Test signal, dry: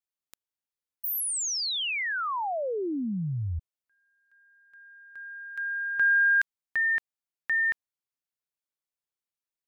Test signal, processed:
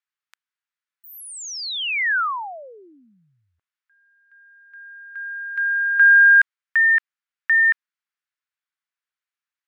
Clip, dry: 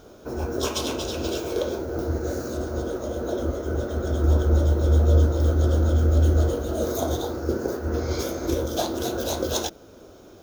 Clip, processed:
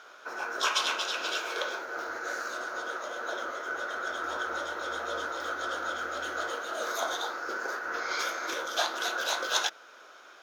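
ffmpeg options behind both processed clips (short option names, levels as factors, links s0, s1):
-af "highpass=f=1500:t=q:w=1.7,aemphasis=mode=reproduction:type=75fm,volume=2.11"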